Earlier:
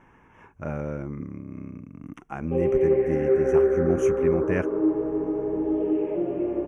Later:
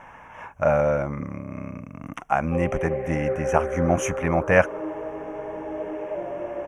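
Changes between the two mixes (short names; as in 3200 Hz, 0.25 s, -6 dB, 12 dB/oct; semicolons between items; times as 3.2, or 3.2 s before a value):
speech +11.5 dB; master: add resonant low shelf 480 Hz -7 dB, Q 3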